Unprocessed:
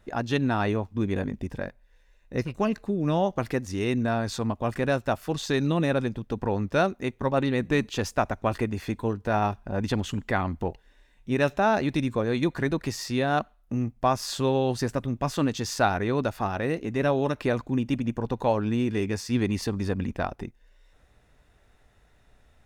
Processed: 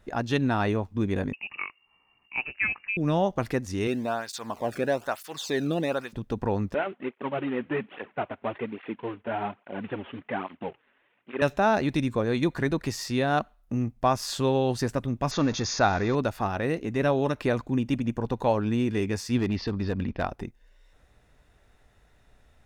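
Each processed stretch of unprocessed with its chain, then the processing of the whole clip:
1.33–2.97 low shelf 180 Hz -11.5 dB + inverted band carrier 2800 Hz
3.87–6.13 zero-crossing step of -39 dBFS + tape flanging out of phase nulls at 1.1 Hz, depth 1.1 ms
6.74–11.42 CVSD 16 kbps + HPF 230 Hz + tape flanging out of phase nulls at 1.2 Hz, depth 6.8 ms
15.31–16.15 zero-crossing step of -32 dBFS + Chebyshev low-pass 6900 Hz, order 10 + notch 3000 Hz, Q 6.2
19.38–20.22 steep low-pass 5200 Hz 48 dB/oct + hard clip -21 dBFS
whole clip: dry

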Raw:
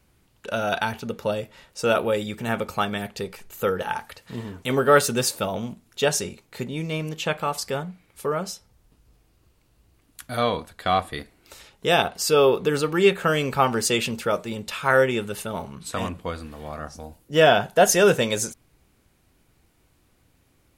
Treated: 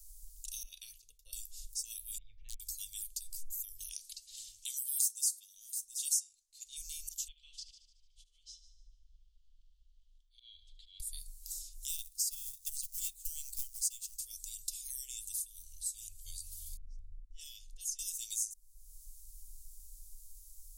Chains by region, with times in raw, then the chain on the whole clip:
0.63–1.33 gate -41 dBFS, range -13 dB + three-band isolator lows -16 dB, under 180 Hz, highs -18 dB, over 2600 Hz + three-band expander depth 40%
2.18–2.6 inverse Chebyshev low-pass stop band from 8200 Hz, stop band 70 dB + hard clip -18 dBFS
3.89–6.77 low-pass opened by the level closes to 2200 Hz, open at -16.5 dBFS + tilt +4 dB/oct + echo 0.729 s -23.5 dB
7.28–11 ladder low-pass 3400 Hz, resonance 75% + auto swell 0.351 s + multi-head echo 74 ms, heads first and second, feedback 42%, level -16 dB
11.88–14.16 transient shaper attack +8 dB, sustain -7 dB + companded quantiser 6-bit
16.77–17.99 low-pass opened by the level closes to 620 Hz, open at -10.5 dBFS + compressor 2.5:1, threshold -35 dBFS
whole clip: inverse Chebyshev band-stop 130–1600 Hz, stop band 70 dB; low shelf 160 Hz +6.5 dB; compressor 3:1, threshold -57 dBFS; gain +15.5 dB

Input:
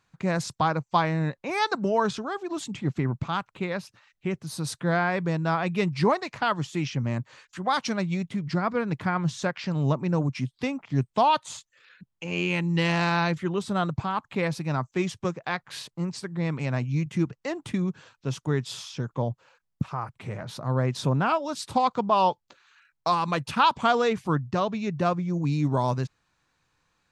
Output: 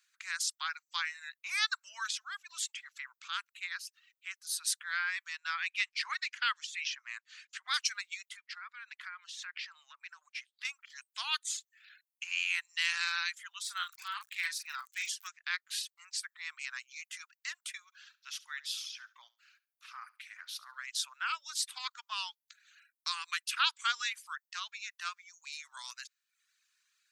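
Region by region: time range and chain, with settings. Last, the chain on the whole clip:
5.28–7.74 LPF 6300 Hz + bell 2300 Hz +3.5 dB 1.1 oct
8.37–10.65 three-band isolator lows -13 dB, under 320 Hz, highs -13 dB, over 3900 Hz + compressor 12:1, threshold -29 dBFS
13.63–15.27 doubler 40 ms -5 dB + crackle 75/s -38 dBFS
17.85–20.84 bell 7600 Hz -9.5 dB 0.53 oct + feedback echo 70 ms, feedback 22%, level -9 dB
whole clip: reverb removal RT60 0.66 s; steep high-pass 1400 Hz 36 dB/oct; high shelf 4200 Hz +10.5 dB; gain -3.5 dB

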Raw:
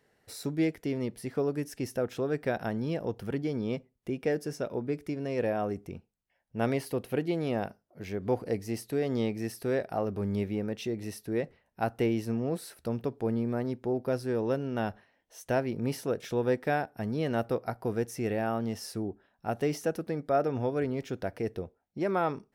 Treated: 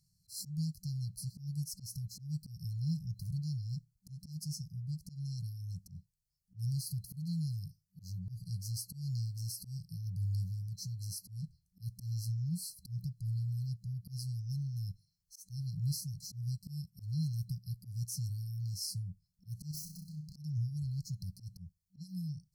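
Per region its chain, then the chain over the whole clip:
19.71–20.36 self-modulated delay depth 0.36 ms + compressor 5:1, threshold -38 dBFS + flutter echo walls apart 5.6 m, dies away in 0.35 s
whole clip: FFT band-reject 190–4100 Hz; dynamic EQ 220 Hz, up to -4 dB, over -55 dBFS, Q 2.9; auto swell 0.124 s; gain +3 dB

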